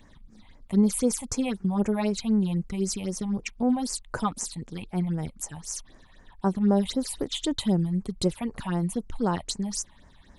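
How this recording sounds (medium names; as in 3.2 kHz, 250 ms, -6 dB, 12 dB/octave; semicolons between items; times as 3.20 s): phasing stages 6, 3.9 Hz, lowest notch 370–3700 Hz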